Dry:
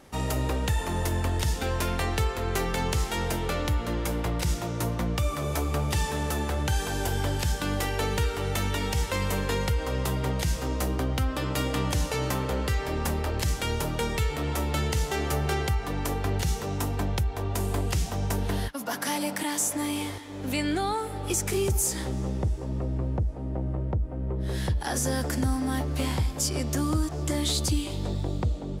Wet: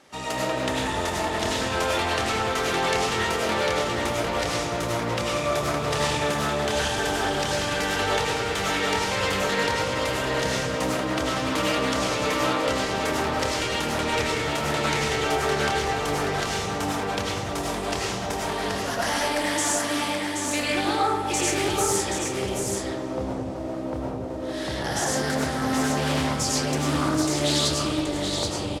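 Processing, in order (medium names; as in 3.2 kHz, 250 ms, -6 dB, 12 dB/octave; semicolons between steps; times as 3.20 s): high-pass 150 Hz 6 dB/octave; tilt EQ +2 dB/octave; modulation noise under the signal 16 dB; distance through air 64 m; delay 777 ms -5 dB; algorithmic reverb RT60 1.3 s, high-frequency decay 0.3×, pre-delay 60 ms, DRR -5 dB; loudspeaker Doppler distortion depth 0.29 ms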